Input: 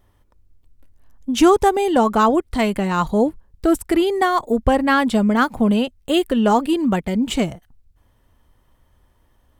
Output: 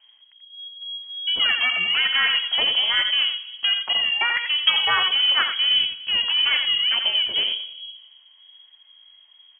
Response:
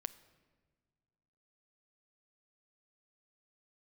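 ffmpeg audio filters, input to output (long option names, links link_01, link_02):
-filter_complex "[0:a]equalizer=frequency=570:width_type=o:width=1.3:gain=-8,asetrate=57191,aresample=44100,atempo=0.771105,acrossover=split=110|2000[link_01][link_02][link_03];[link_02]asoftclip=type=tanh:threshold=-23.5dB[link_04];[link_03]tremolo=f=190:d=0.889[link_05];[link_01][link_04][link_05]amix=inputs=3:normalize=0,aecho=1:1:86:0.422[link_06];[1:a]atrim=start_sample=2205[link_07];[link_06][link_07]afir=irnorm=-1:irlink=0,lowpass=frequency=2800:width_type=q:width=0.5098,lowpass=frequency=2800:width_type=q:width=0.6013,lowpass=frequency=2800:width_type=q:width=0.9,lowpass=frequency=2800:width_type=q:width=2.563,afreqshift=-3300,volume=6.5dB"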